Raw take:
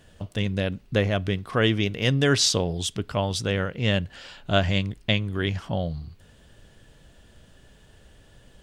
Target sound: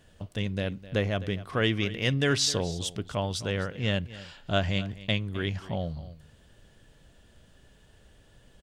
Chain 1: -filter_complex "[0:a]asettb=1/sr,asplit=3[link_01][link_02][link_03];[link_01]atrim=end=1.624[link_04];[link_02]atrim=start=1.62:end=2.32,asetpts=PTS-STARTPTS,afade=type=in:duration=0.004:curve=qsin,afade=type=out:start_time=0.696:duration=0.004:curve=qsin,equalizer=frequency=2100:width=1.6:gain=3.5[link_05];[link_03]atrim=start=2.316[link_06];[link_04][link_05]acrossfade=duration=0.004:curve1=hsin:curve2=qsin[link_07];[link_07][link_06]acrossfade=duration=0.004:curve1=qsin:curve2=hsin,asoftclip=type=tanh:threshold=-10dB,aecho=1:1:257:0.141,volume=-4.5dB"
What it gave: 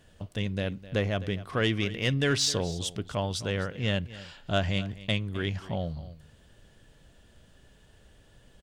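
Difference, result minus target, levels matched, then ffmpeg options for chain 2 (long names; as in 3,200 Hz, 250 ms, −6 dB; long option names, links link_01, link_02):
soft clipping: distortion +11 dB
-filter_complex "[0:a]asettb=1/sr,asplit=3[link_01][link_02][link_03];[link_01]atrim=end=1.624[link_04];[link_02]atrim=start=1.62:end=2.32,asetpts=PTS-STARTPTS,afade=type=in:duration=0.004:curve=qsin,afade=type=out:start_time=0.696:duration=0.004:curve=qsin,equalizer=frequency=2100:width=1.6:gain=3.5[link_05];[link_03]atrim=start=2.316[link_06];[link_04][link_05]acrossfade=duration=0.004:curve1=hsin:curve2=qsin[link_07];[link_07][link_06]acrossfade=duration=0.004:curve1=qsin:curve2=hsin,asoftclip=type=tanh:threshold=-3.5dB,aecho=1:1:257:0.141,volume=-4.5dB"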